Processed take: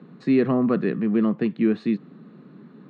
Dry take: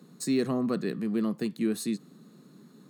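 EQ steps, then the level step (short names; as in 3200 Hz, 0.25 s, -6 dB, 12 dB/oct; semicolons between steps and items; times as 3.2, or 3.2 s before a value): LPF 2800 Hz 24 dB/oct; +7.5 dB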